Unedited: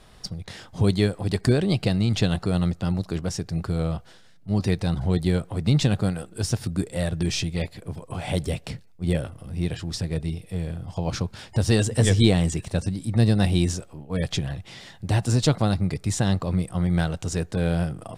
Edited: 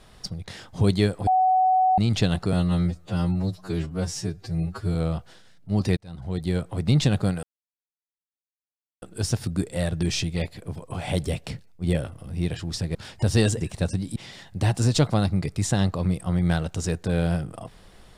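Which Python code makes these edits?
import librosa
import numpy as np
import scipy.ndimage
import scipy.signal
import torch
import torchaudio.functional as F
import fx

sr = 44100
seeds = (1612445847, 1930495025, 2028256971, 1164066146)

y = fx.edit(x, sr, fx.bleep(start_s=1.27, length_s=0.71, hz=748.0, db=-16.0),
    fx.stretch_span(start_s=2.53, length_s=1.21, factor=2.0),
    fx.fade_in_span(start_s=4.76, length_s=0.78),
    fx.insert_silence(at_s=6.22, length_s=1.59),
    fx.cut(start_s=10.15, length_s=1.14),
    fx.cut(start_s=11.95, length_s=0.59),
    fx.cut(start_s=13.09, length_s=1.55), tone=tone)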